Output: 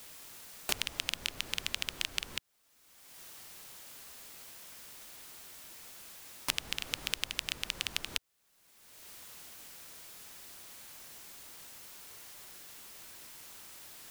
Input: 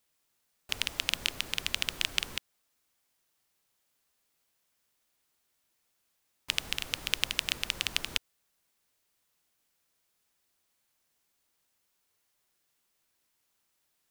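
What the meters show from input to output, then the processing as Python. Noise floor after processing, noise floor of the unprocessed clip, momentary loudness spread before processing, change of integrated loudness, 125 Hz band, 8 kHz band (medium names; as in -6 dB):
-68 dBFS, -77 dBFS, 5 LU, -8.0 dB, -2.5 dB, -0.5 dB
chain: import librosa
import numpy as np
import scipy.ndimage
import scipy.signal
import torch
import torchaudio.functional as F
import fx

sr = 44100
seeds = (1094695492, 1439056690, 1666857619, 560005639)

y = fx.band_squash(x, sr, depth_pct=100)
y = F.gain(torch.from_numpy(y), -4.0).numpy()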